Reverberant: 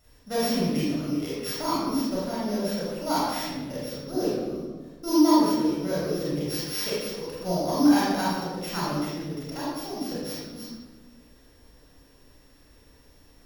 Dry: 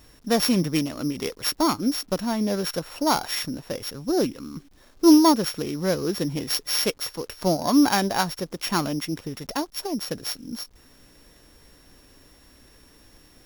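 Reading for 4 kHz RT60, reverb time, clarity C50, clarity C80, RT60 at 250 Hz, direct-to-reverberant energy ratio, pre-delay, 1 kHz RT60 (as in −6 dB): 0.85 s, 1.4 s, −3.0 dB, 0.5 dB, 1.7 s, −8.0 dB, 27 ms, 1.2 s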